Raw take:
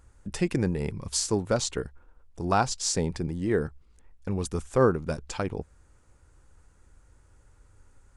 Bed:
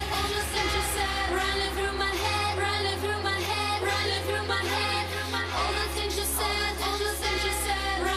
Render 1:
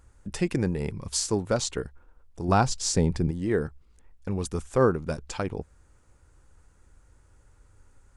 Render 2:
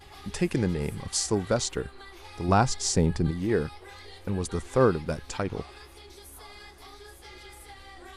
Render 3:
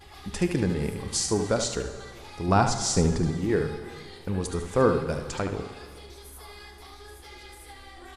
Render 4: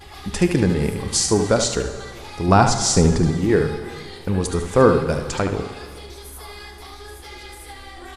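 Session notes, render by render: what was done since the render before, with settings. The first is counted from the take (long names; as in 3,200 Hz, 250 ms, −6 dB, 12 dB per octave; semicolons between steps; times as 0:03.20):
0:02.48–0:03.31: low-shelf EQ 300 Hz +7.5 dB
mix in bed −19.5 dB
single-tap delay 73 ms −8 dB; dense smooth reverb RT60 1.8 s, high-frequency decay 0.8×, DRR 9.5 dB
level +7.5 dB; brickwall limiter −2 dBFS, peak gain reduction 1.5 dB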